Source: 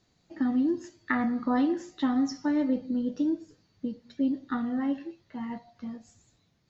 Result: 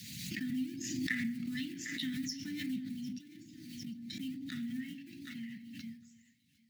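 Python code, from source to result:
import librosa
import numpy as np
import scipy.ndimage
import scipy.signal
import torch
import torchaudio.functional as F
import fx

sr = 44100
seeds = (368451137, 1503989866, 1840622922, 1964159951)

y = fx.law_mismatch(x, sr, coded='A')
y = scipy.signal.sosfilt(scipy.signal.butter(4, 97.0, 'highpass', fs=sr, output='sos'), y)
y = fx.room_shoebox(y, sr, seeds[0], volume_m3=720.0, walls='furnished', distance_m=0.93)
y = fx.hpss(y, sr, part='harmonic', gain_db=-10)
y = fx.over_compress(y, sr, threshold_db=-45.0, ratio=-1.0, at=(3.08, 3.88))
y = scipy.signal.sosfilt(scipy.signal.ellip(3, 1.0, 40, [230.0, 2100.0], 'bandstop', fs=sr, output='sos'), y)
y = fx.echo_thinned(y, sr, ms=753, feedback_pct=28, hz=470.0, wet_db=-18.0)
y = fx.pre_swell(y, sr, db_per_s=31.0)
y = F.gain(torch.from_numpy(y), 3.5).numpy()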